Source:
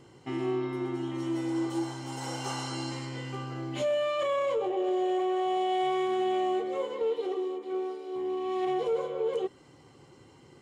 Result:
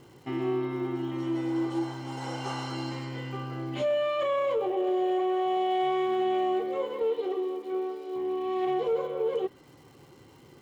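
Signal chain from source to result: distance through air 55 m; crackle 400 per s -52 dBFS; dynamic bell 7 kHz, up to -5 dB, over -59 dBFS, Q 0.98; trim +1.5 dB

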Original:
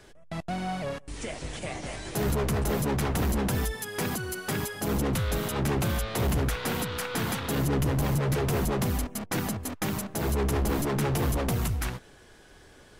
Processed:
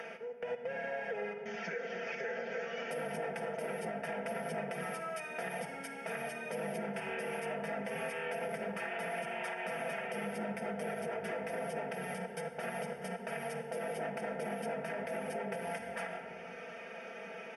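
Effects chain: high-pass 320 Hz 24 dB/octave; simulated room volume 2500 m³, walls furnished, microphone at 1.6 m; tape speed -26%; upward compressor, threshold -32 dBFS; boxcar filter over 6 samples; static phaser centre 1.1 kHz, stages 6; comb 4.4 ms, depth 81%; compression 2.5:1, threshold -36 dBFS, peak gain reduction 6 dB; peak limiter -30 dBFS, peak gain reduction 6 dB; trim +1 dB

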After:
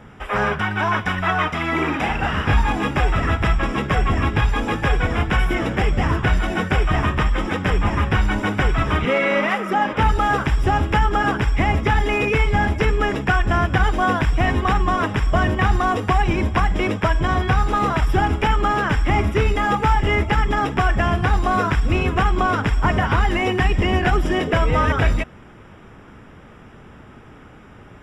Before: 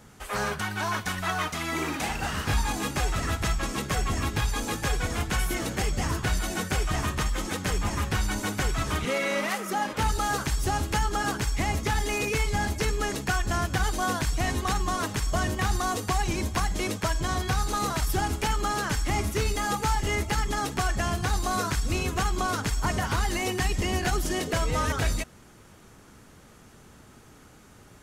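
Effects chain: Savitzky-Golay filter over 25 samples; trim +9 dB

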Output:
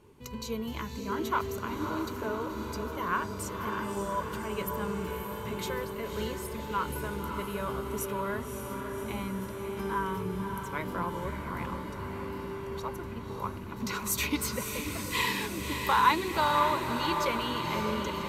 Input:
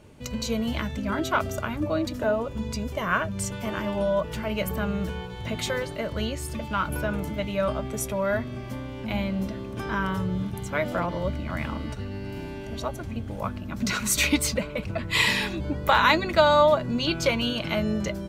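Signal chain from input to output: graphic EQ with 31 bands 400 Hz +11 dB, 630 Hz -10 dB, 1 kHz +11 dB, 12.5 kHz +10 dB; echo that smears into a reverb 571 ms, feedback 69%, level -6 dB; trim -9 dB

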